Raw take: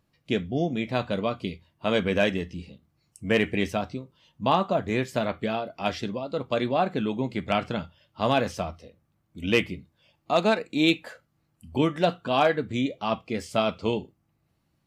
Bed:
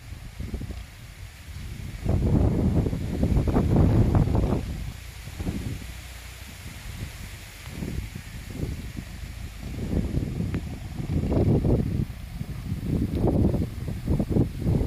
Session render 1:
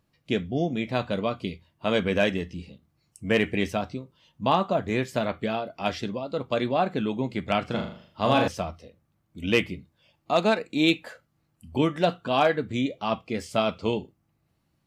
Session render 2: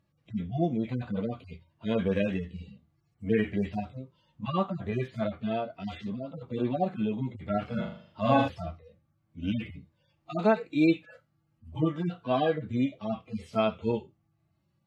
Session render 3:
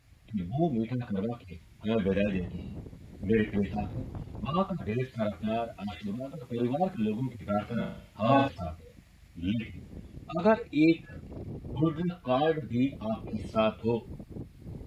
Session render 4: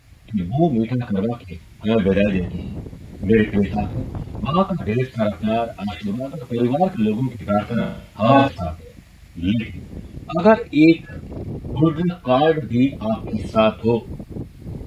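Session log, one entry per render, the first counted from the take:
0:07.64–0:08.48: flutter between parallel walls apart 6.8 metres, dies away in 0.51 s
harmonic-percussive split with one part muted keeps harmonic; high-shelf EQ 5,800 Hz −9.5 dB
mix in bed −19 dB
level +10.5 dB; brickwall limiter −1 dBFS, peak gain reduction 2 dB

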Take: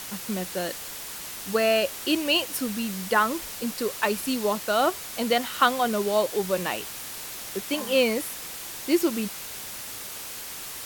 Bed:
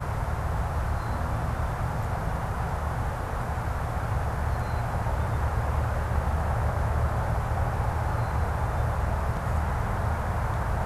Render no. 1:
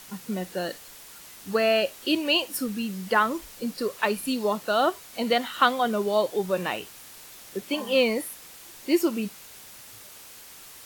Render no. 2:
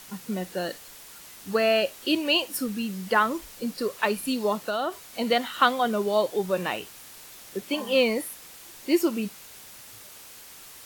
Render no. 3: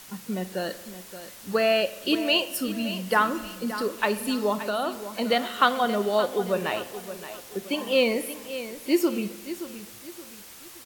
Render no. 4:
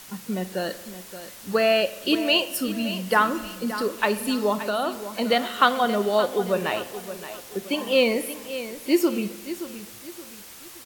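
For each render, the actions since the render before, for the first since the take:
noise reduction from a noise print 9 dB
0:04.67–0:05.08: downward compressor, threshold −23 dBFS
repeating echo 573 ms, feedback 36%, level −12.5 dB; spring reverb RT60 1.3 s, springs 43 ms, chirp 30 ms, DRR 14 dB
level +2 dB

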